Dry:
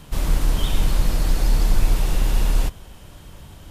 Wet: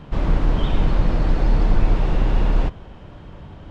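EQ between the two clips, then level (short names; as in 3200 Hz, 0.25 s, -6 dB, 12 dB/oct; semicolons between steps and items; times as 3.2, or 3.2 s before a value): tape spacing loss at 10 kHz 37 dB; low shelf 87 Hz -8 dB; +7.5 dB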